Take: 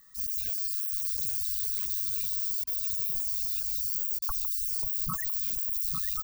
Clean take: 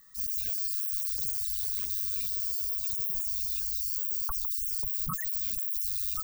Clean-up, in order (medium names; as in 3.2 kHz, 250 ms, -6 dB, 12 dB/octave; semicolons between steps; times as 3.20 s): interpolate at 1.17/3.63/4.07 s, 3.8 ms; interpolate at 2.64/4.19 s, 30 ms; inverse comb 851 ms -6.5 dB